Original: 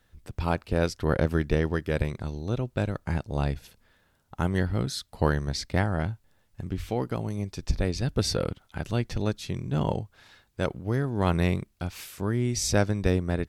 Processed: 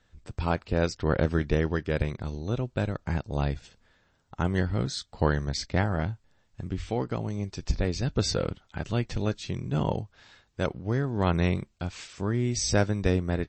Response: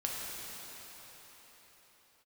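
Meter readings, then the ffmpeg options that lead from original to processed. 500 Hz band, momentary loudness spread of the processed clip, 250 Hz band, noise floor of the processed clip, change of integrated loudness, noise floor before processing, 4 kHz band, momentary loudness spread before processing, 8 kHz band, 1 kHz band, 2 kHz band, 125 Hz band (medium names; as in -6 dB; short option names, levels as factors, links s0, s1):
-0.5 dB, 10 LU, -0.5 dB, -68 dBFS, -0.5 dB, -67 dBFS, 0.0 dB, 10 LU, -0.5 dB, -0.5 dB, -0.5 dB, -0.5 dB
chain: -ar 22050 -c:a libmp3lame -b:a 32k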